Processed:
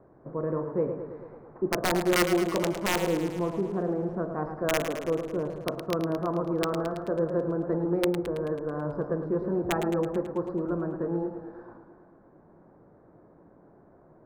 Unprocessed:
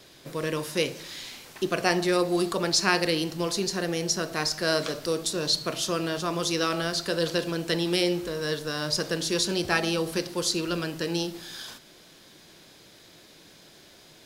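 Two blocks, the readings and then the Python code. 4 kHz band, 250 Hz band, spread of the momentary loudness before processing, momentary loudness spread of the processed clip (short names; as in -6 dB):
-12.5 dB, +0.5 dB, 8 LU, 7 LU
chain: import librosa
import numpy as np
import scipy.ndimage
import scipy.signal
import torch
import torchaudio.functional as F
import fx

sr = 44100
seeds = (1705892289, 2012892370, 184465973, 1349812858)

y = scipy.signal.sosfilt(scipy.signal.cheby2(4, 50, 2900.0, 'lowpass', fs=sr, output='sos'), x)
y = (np.mod(10.0 ** (16.5 / 20.0) * y + 1.0, 2.0) - 1.0) / 10.0 ** (16.5 / 20.0)
y = fx.echo_warbled(y, sr, ms=109, feedback_pct=66, rate_hz=2.8, cents=80, wet_db=-9)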